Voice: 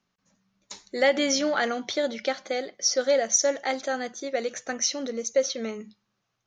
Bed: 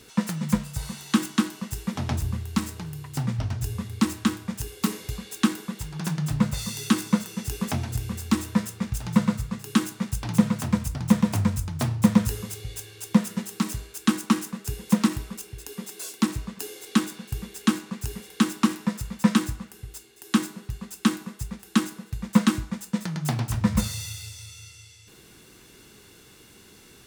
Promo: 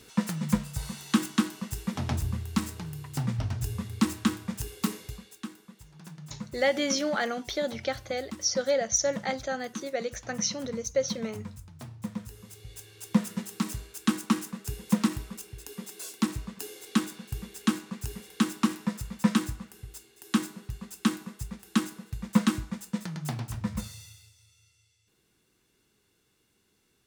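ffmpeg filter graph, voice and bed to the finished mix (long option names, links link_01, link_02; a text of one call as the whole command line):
ffmpeg -i stem1.wav -i stem2.wav -filter_complex "[0:a]adelay=5600,volume=-3.5dB[link_01];[1:a]volume=11dB,afade=type=out:start_time=4.74:duration=0.68:silence=0.177828,afade=type=in:start_time=12.32:duration=0.92:silence=0.211349,afade=type=out:start_time=22.75:duration=1.58:silence=0.16788[link_02];[link_01][link_02]amix=inputs=2:normalize=0" out.wav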